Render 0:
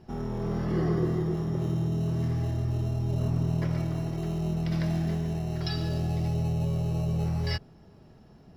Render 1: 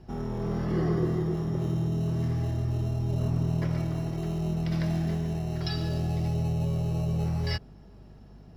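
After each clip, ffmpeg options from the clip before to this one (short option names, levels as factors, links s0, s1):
-af "aeval=exprs='val(0)+0.00316*(sin(2*PI*50*n/s)+sin(2*PI*2*50*n/s)/2+sin(2*PI*3*50*n/s)/3+sin(2*PI*4*50*n/s)/4+sin(2*PI*5*50*n/s)/5)':c=same"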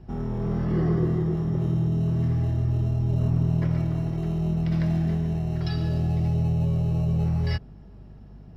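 -af "bass=f=250:g=5,treble=f=4000:g=-7"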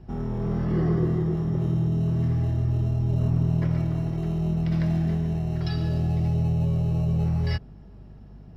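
-af anull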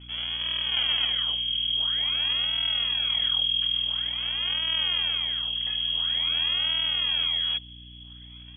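-af "acrusher=samples=38:mix=1:aa=0.000001:lfo=1:lforange=60.8:lforate=0.48,lowpass=f=2900:t=q:w=0.5098,lowpass=f=2900:t=q:w=0.6013,lowpass=f=2900:t=q:w=0.9,lowpass=f=2900:t=q:w=2.563,afreqshift=-3400,aeval=exprs='val(0)+0.00708*(sin(2*PI*60*n/s)+sin(2*PI*2*60*n/s)/2+sin(2*PI*3*60*n/s)/3+sin(2*PI*4*60*n/s)/4+sin(2*PI*5*60*n/s)/5)':c=same,volume=0.708"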